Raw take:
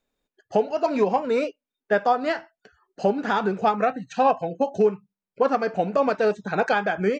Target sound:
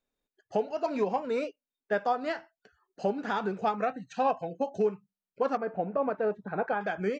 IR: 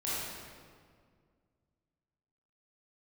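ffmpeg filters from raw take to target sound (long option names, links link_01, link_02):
-filter_complex "[0:a]asettb=1/sr,asplit=3[link_01][link_02][link_03];[link_01]atrim=end=5.574[link_04];[link_02]atrim=start=5.57:end=6.81,asetpts=PTS-STARTPTS,afade=type=in:duration=0.004:curve=qsin,afade=type=out:start_time=1.236:duration=0.004:curve=qsin,lowpass=1500[link_05];[link_03]atrim=start=6.806[link_06];[link_04][link_05]acrossfade=duration=0.004:curve1=hsin:curve2=qsin[link_07];[link_07][link_06]acrossfade=duration=0.004:curve1=qsin:curve2=hsin,volume=-7.5dB"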